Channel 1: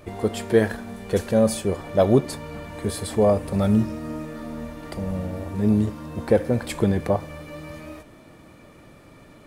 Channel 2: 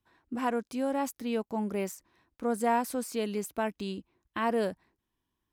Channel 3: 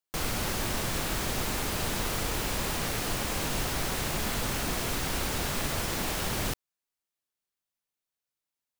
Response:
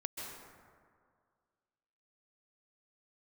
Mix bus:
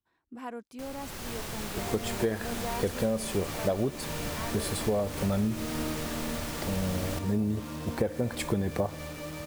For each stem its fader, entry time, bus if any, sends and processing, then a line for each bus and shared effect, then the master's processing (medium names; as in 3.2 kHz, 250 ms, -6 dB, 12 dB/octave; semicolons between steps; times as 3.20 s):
-2.0 dB, 1.70 s, no send, bit crusher 7-bit
-9.5 dB, 0.00 s, no send, none
-16.0 dB, 0.65 s, no send, level rider gain up to 9.5 dB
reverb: none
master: compression 12:1, threshold -24 dBFS, peak gain reduction 12 dB